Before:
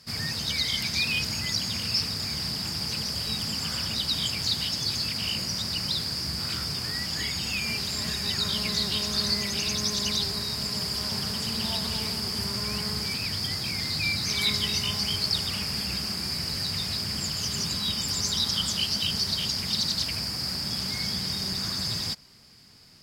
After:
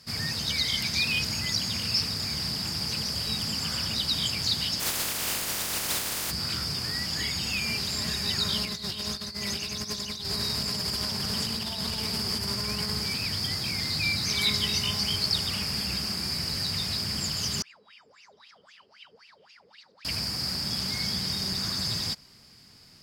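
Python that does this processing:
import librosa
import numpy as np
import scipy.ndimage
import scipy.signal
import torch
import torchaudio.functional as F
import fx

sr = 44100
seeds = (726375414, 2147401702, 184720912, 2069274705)

y = fx.spec_flatten(x, sr, power=0.18, at=(4.79, 6.3), fade=0.02)
y = fx.over_compress(y, sr, threshold_db=-31.0, ratio=-0.5, at=(8.65, 12.92))
y = fx.wah_lfo(y, sr, hz=3.8, low_hz=430.0, high_hz=2800.0, q=18.0, at=(17.62, 20.05))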